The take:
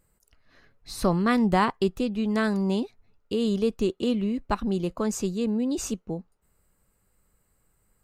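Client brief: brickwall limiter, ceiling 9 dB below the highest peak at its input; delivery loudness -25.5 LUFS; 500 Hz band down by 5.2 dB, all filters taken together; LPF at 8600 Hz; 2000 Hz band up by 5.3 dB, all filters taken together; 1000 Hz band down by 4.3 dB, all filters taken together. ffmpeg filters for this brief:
-af "lowpass=8.6k,equalizer=f=500:t=o:g=-6,equalizer=f=1k:t=o:g=-6,equalizer=f=2k:t=o:g=9,volume=4dB,alimiter=limit=-15dB:level=0:latency=1"

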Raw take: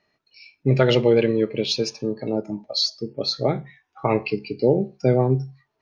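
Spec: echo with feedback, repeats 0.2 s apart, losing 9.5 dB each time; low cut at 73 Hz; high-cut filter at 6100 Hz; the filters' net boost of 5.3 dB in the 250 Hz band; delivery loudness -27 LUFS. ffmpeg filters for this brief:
-af "highpass=73,lowpass=6.1k,equalizer=f=250:t=o:g=7,aecho=1:1:200|400|600|800:0.335|0.111|0.0365|0.012,volume=-7.5dB"

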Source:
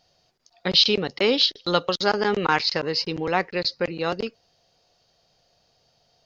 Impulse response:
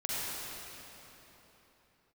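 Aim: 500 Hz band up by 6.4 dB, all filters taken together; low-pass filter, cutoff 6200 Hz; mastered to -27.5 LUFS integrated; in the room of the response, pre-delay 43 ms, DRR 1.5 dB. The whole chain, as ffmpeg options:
-filter_complex "[0:a]lowpass=6.2k,equalizer=f=500:t=o:g=7.5,asplit=2[a][b];[1:a]atrim=start_sample=2205,adelay=43[c];[b][c]afir=irnorm=-1:irlink=0,volume=-8dB[d];[a][d]amix=inputs=2:normalize=0,volume=-9.5dB"

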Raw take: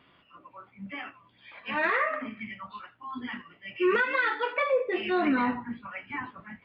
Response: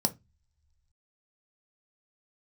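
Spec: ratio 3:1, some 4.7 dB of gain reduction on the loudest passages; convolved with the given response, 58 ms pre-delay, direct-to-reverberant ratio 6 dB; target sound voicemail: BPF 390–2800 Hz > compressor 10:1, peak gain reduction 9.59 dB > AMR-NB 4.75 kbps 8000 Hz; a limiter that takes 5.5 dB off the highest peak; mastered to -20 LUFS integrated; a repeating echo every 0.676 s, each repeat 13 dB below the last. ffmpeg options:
-filter_complex "[0:a]acompressor=threshold=-27dB:ratio=3,alimiter=limit=-24dB:level=0:latency=1,aecho=1:1:676|1352|2028:0.224|0.0493|0.0108,asplit=2[a][b];[1:a]atrim=start_sample=2205,adelay=58[c];[b][c]afir=irnorm=-1:irlink=0,volume=-12dB[d];[a][d]amix=inputs=2:normalize=0,highpass=390,lowpass=2.8k,acompressor=threshold=-35dB:ratio=10,volume=23dB" -ar 8000 -c:a libopencore_amrnb -b:a 4750

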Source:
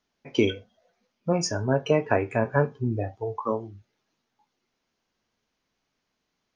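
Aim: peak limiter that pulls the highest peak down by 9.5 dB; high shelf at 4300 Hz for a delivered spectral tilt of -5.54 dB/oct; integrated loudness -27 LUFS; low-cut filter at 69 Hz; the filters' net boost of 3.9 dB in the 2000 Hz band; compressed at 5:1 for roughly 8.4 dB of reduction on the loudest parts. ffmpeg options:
-af "highpass=69,equalizer=f=2k:t=o:g=6.5,highshelf=f=4.3k:g=-7.5,acompressor=threshold=-25dB:ratio=5,volume=6.5dB,alimiter=limit=-13.5dB:level=0:latency=1"

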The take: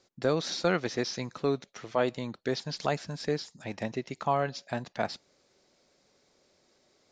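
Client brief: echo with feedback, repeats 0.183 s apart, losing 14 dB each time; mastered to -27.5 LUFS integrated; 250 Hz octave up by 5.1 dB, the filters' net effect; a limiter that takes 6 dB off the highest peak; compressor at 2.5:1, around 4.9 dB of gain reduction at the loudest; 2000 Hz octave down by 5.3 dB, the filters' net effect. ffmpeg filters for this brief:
-af "equalizer=f=250:t=o:g=6.5,equalizer=f=2k:t=o:g=-7.5,acompressor=threshold=-27dB:ratio=2.5,alimiter=limit=-21.5dB:level=0:latency=1,aecho=1:1:183|366:0.2|0.0399,volume=8dB"

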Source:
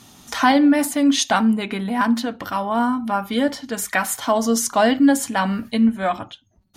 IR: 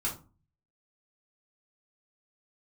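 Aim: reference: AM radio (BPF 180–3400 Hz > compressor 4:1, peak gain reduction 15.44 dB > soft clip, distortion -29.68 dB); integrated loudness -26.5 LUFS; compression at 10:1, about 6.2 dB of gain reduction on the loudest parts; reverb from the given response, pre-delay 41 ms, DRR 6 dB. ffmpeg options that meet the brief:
-filter_complex "[0:a]acompressor=threshold=-17dB:ratio=10,asplit=2[a][b];[1:a]atrim=start_sample=2205,adelay=41[c];[b][c]afir=irnorm=-1:irlink=0,volume=-10.5dB[d];[a][d]amix=inputs=2:normalize=0,highpass=180,lowpass=3.4k,acompressor=threshold=-34dB:ratio=4,asoftclip=threshold=-19.5dB,volume=9dB"

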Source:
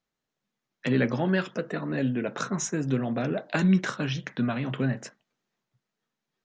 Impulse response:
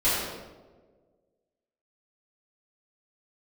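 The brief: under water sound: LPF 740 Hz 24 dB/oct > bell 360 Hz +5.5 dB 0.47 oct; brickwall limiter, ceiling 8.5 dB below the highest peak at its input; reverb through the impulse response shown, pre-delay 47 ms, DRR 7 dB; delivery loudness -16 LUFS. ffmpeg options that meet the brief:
-filter_complex "[0:a]alimiter=limit=-19.5dB:level=0:latency=1,asplit=2[a][b];[1:a]atrim=start_sample=2205,adelay=47[c];[b][c]afir=irnorm=-1:irlink=0,volume=-21.5dB[d];[a][d]amix=inputs=2:normalize=0,lowpass=f=740:w=0.5412,lowpass=f=740:w=1.3066,equalizer=f=360:t=o:w=0.47:g=5.5,volume=12.5dB"

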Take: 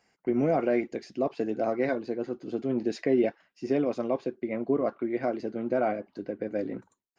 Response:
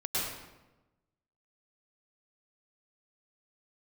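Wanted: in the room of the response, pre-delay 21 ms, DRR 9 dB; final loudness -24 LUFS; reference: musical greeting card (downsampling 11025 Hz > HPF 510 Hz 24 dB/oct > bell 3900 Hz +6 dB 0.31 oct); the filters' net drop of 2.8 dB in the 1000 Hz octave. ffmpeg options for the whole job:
-filter_complex "[0:a]equalizer=f=1k:t=o:g=-4.5,asplit=2[a][b];[1:a]atrim=start_sample=2205,adelay=21[c];[b][c]afir=irnorm=-1:irlink=0,volume=-16dB[d];[a][d]amix=inputs=2:normalize=0,aresample=11025,aresample=44100,highpass=f=510:w=0.5412,highpass=f=510:w=1.3066,equalizer=f=3.9k:t=o:w=0.31:g=6,volume=11.5dB"

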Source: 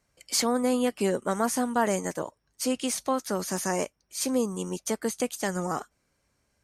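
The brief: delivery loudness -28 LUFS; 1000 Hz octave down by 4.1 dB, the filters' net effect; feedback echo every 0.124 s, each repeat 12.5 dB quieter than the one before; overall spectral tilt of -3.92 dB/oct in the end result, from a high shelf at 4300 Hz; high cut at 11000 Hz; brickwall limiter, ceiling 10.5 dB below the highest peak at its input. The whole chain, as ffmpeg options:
-af "lowpass=11k,equalizer=f=1k:t=o:g=-5.5,highshelf=f=4.3k:g=-3.5,alimiter=level_in=1dB:limit=-24dB:level=0:latency=1,volume=-1dB,aecho=1:1:124|248|372:0.237|0.0569|0.0137,volume=7.5dB"

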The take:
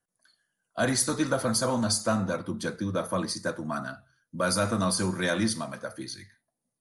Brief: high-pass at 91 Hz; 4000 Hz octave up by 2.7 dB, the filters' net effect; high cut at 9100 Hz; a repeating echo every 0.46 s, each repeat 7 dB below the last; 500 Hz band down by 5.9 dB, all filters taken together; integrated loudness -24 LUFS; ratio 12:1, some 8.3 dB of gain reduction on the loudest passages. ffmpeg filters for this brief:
-af "highpass=91,lowpass=9.1k,equalizer=f=500:t=o:g=-7.5,equalizer=f=4k:t=o:g=3.5,acompressor=threshold=-31dB:ratio=12,aecho=1:1:460|920|1380|1840|2300:0.447|0.201|0.0905|0.0407|0.0183,volume=11.5dB"

